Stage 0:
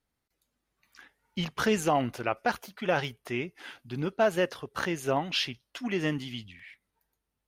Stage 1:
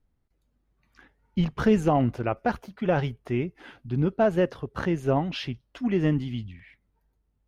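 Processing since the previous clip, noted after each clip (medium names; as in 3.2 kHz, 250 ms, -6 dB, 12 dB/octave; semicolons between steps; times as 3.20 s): tilt EQ -3.5 dB/octave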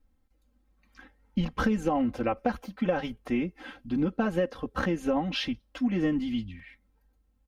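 comb 3.8 ms, depth 95%; compression 6:1, threshold -23 dBFS, peak gain reduction 10 dB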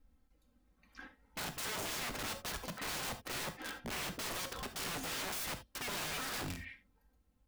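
peak limiter -23.5 dBFS, peak gain reduction 9 dB; integer overflow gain 35.5 dB; gated-style reverb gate 100 ms flat, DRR 8 dB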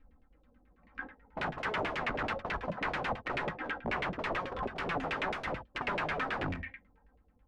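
LFO low-pass saw down 9.2 Hz 440–2700 Hz; trim +5.5 dB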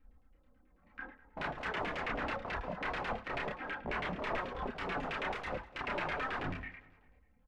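chorus voices 6, 0.96 Hz, delay 30 ms, depth 3 ms; feedback delay 199 ms, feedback 44%, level -20.5 dB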